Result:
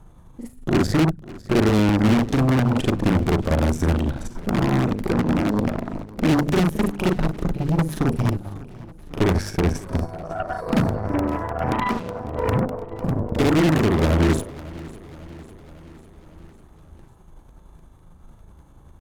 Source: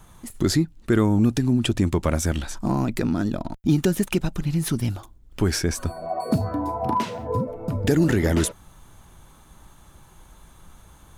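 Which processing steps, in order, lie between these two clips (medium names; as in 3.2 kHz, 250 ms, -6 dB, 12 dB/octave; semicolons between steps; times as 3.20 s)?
tilt shelf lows +8.5 dB, about 1.1 kHz; hum notches 50/100/150/200/250 Hz; granular stretch 1.7×, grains 186 ms; Chebyshev shaper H 6 -11 dB, 8 -26 dB, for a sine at -9 dBFS; feedback delay 549 ms, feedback 59%, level -19.5 dB; crackling interface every 0.10 s, samples 64, repeat, from 0.89 s; trim -3.5 dB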